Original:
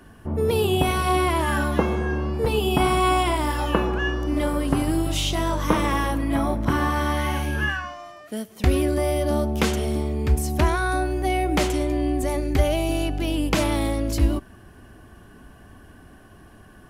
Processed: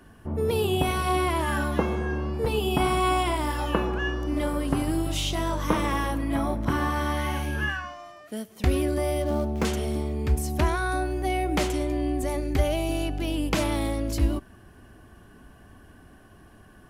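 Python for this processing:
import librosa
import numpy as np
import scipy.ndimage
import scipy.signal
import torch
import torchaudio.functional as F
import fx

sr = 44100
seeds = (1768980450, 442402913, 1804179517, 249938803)

y = fx.median_filter(x, sr, points=15, at=(9.22, 9.65))
y = y * librosa.db_to_amplitude(-3.5)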